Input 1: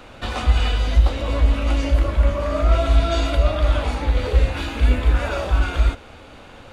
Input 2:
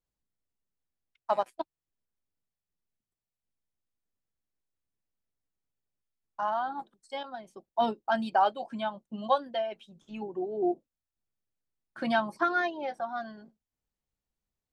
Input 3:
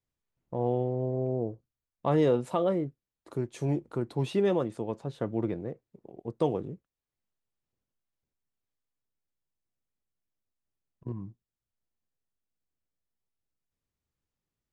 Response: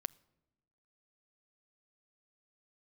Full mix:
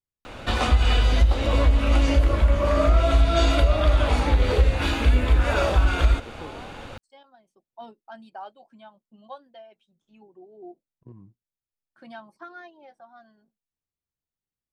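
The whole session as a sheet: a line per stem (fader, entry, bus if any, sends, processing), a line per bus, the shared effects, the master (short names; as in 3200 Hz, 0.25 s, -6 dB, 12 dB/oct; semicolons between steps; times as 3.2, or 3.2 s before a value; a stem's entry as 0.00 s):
+3.0 dB, 0.25 s, no send, dry
-15.0 dB, 0.00 s, no send, dry
-8.5 dB, 0.00 s, no send, compressor 2:1, threshold -32 dBFS, peak gain reduction 7 dB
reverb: off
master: compressor 4:1, threshold -14 dBFS, peak gain reduction 8 dB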